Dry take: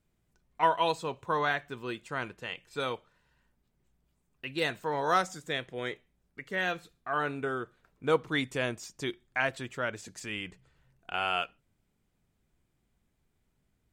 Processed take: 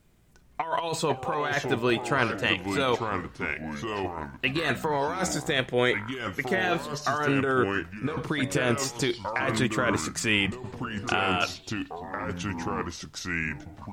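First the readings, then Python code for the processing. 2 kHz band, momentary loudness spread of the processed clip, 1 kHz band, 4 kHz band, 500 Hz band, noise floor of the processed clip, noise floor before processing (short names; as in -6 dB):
+6.5 dB, 9 LU, +3.0 dB, +7.0 dB, +5.5 dB, -52 dBFS, -76 dBFS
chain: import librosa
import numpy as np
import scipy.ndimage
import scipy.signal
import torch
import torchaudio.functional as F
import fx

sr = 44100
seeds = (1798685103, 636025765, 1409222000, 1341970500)

y = fx.over_compress(x, sr, threshold_db=-35.0, ratio=-1.0)
y = fx.echo_pitch(y, sr, ms=346, semitones=-4, count=3, db_per_echo=-6.0)
y = y * librosa.db_to_amplitude(9.0)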